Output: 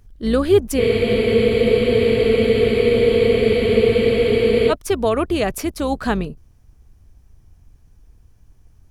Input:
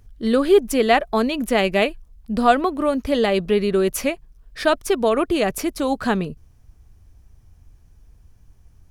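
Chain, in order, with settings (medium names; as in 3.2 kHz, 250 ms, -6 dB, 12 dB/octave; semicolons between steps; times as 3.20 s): octave divider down 2 oct, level -6 dB; spectral freeze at 0.81 s, 3.90 s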